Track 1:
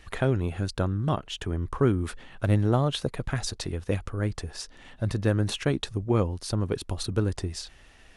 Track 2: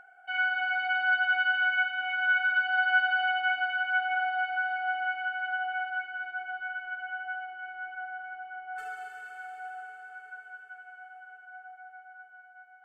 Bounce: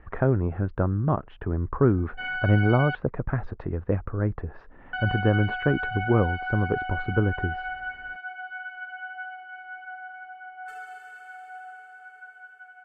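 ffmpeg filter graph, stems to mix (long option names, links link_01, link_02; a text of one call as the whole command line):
ffmpeg -i stem1.wav -i stem2.wav -filter_complex "[0:a]lowpass=frequency=1600:width=0.5412,lowpass=frequency=1600:width=1.3066,volume=2.5dB[link_01];[1:a]alimiter=limit=-23dB:level=0:latency=1,adelay=1900,volume=-1dB,asplit=3[link_02][link_03][link_04];[link_02]atrim=end=2.95,asetpts=PTS-STARTPTS,afade=type=out:start_time=2.946:duration=0.004:curve=hsin[link_05];[link_03]atrim=start=2.95:end=4.93,asetpts=PTS-STARTPTS,volume=0[link_06];[link_04]atrim=start=4.93,asetpts=PTS-STARTPTS,afade=type=in:duration=0.004:curve=hsin[link_07];[link_05][link_06][link_07]concat=n=3:v=0:a=1[link_08];[link_01][link_08]amix=inputs=2:normalize=0" out.wav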